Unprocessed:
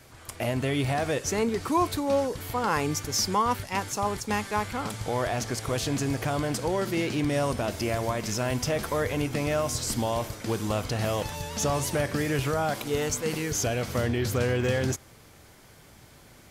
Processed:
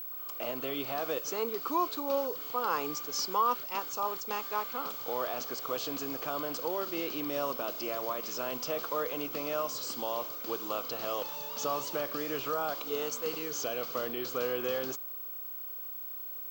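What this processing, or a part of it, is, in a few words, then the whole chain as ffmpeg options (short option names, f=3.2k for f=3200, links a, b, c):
old television with a line whistle: -af "highpass=f=200:w=0.5412,highpass=f=200:w=1.3066,equalizer=f=210:t=q:w=4:g=-10,equalizer=f=490:t=q:w=4:g=4,equalizer=f=1.2k:t=q:w=4:g=10,equalizer=f=1.9k:t=q:w=4:g=-8,equalizer=f=3k:t=q:w=4:g=4,equalizer=f=4.5k:t=q:w=4:g=4,lowpass=f=7.3k:w=0.5412,lowpass=f=7.3k:w=1.3066,aeval=exprs='val(0)+0.0316*sin(2*PI*15734*n/s)':c=same,volume=-8dB"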